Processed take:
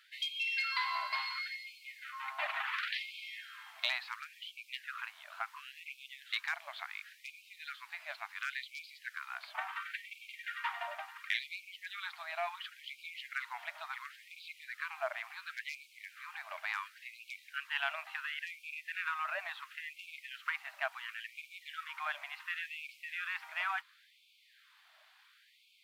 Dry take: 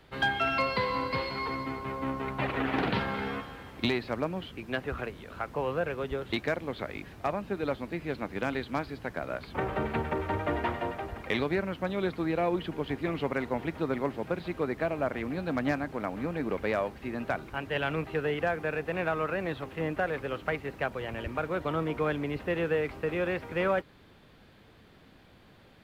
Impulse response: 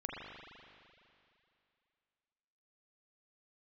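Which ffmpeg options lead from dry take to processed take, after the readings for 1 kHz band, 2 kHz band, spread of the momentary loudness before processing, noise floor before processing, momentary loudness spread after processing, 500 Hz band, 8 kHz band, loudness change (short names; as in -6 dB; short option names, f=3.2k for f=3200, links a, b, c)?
-8.0 dB, -3.0 dB, 6 LU, -57 dBFS, 12 LU, -21.0 dB, n/a, -8.0 dB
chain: -af "lowshelf=f=510:t=q:w=3:g=12.5,afftfilt=real='re*gte(b*sr/1024,600*pow(2200/600,0.5+0.5*sin(2*PI*0.71*pts/sr)))':imag='im*gte(b*sr/1024,600*pow(2200/600,0.5+0.5*sin(2*PI*0.71*pts/sr)))':win_size=1024:overlap=0.75"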